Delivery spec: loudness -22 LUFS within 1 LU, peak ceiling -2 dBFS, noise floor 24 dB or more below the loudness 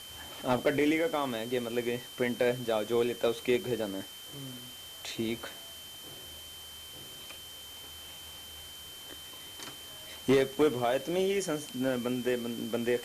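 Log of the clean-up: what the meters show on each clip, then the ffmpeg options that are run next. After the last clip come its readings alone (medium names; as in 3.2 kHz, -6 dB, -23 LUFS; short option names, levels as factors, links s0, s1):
steady tone 3.1 kHz; tone level -46 dBFS; noise floor -47 dBFS; noise floor target -56 dBFS; loudness -31.5 LUFS; peak level -17.0 dBFS; loudness target -22.0 LUFS
-> -af "bandreject=f=3100:w=30"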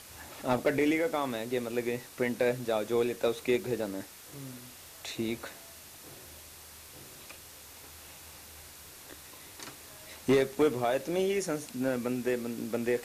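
steady tone not found; noise floor -50 dBFS; noise floor target -55 dBFS
-> -af "afftdn=nr=6:nf=-50"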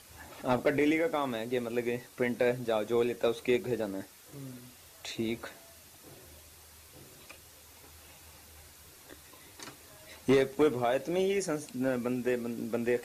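noise floor -55 dBFS; loudness -31.0 LUFS; peak level -17.5 dBFS; loudness target -22.0 LUFS
-> -af "volume=2.82"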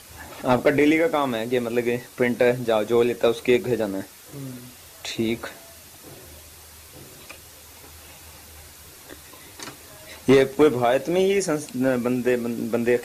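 loudness -22.0 LUFS; peak level -8.5 dBFS; noise floor -46 dBFS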